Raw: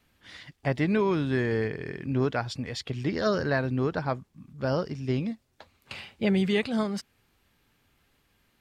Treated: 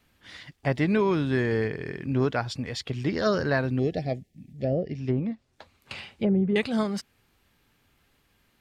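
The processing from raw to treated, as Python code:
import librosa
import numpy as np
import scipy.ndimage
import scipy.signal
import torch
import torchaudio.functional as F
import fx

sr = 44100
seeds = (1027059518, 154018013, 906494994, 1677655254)

y = fx.spec_box(x, sr, start_s=3.79, length_s=1.18, low_hz=790.0, high_hz=1700.0, gain_db=-26)
y = fx.env_lowpass_down(y, sr, base_hz=540.0, full_db=-21.0, at=(4.57, 6.56))
y = y * 10.0 ** (1.5 / 20.0)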